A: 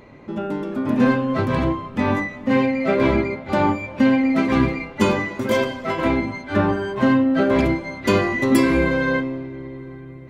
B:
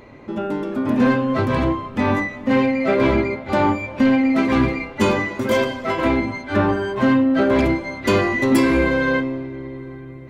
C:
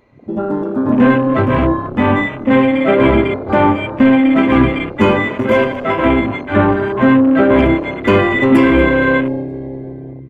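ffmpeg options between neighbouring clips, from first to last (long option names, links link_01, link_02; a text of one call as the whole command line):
ffmpeg -i in.wav -af "equalizer=frequency=170:width_type=o:width=0.31:gain=-6.5,acontrast=90,volume=-5dB" out.wav
ffmpeg -i in.wav -filter_complex "[0:a]asplit=5[link_01][link_02][link_03][link_04][link_05];[link_02]adelay=234,afreqshift=34,volume=-16.5dB[link_06];[link_03]adelay=468,afreqshift=68,volume=-23.1dB[link_07];[link_04]adelay=702,afreqshift=102,volume=-29.6dB[link_08];[link_05]adelay=936,afreqshift=136,volume=-36.2dB[link_09];[link_01][link_06][link_07][link_08][link_09]amix=inputs=5:normalize=0,afwtdn=0.0355,volume=6dB" out.wav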